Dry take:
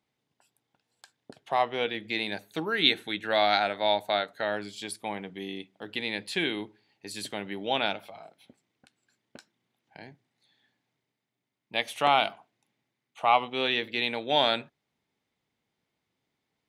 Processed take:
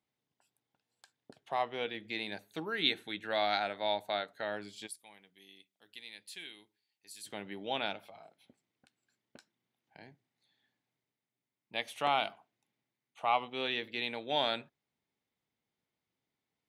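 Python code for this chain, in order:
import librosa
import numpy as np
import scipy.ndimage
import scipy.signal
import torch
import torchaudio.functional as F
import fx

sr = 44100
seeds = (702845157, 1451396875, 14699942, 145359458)

y = fx.pre_emphasis(x, sr, coefficient=0.9, at=(4.86, 7.26), fade=0.02)
y = y * 10.0 ** (-7.5 / 20.0)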